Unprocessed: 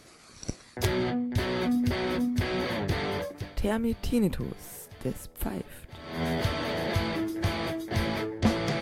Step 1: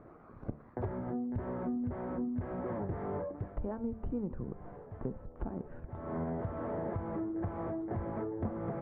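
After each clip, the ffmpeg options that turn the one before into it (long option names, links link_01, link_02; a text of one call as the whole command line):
ffmpeg -i in.wav -af "lowpass=frequency=1200:width=0.5412,lowpass=frequency=1200:width=1.3066,acompressor=threshold=-36dB:ratio=6,bandreject=frequency=74.11:width_type=h:width=4,bandreject=frequency=148.22:width_type=h:width=4,bandreject=frequency=222.33:width_type=h:width=4,bandreject=frequency=296.44:width_type=h:width=4,bandreject=frequency=370.55:width_type=h:width=4,bandreject=frequency=444.66:width_type=h:width=4,bandreject=frequency=518.77:width_type=h:width=4,bandreject=frequency=592.88:width_type=h:width=4,bandreject=frequency=666.99:width_type=h:width=4,bandreject=frequency=741.1:width_type=h:width=4,bandreject=frequency=815.21:width_type=h:width=4,bandreject=frequency=889.32:width_type=h:width=4,bandreject=frequency=963.43:width_type=h:width=4,bandreject=frequency=1037.54:width_type=h:width=4,volume=2.5dB" out.wav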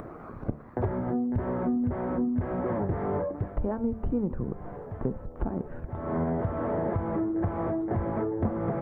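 ffmpeg -i in.wav -af "acompressor=mode=upward:threshold=-43dB:ratio=2.5,volume=8dB" out.wav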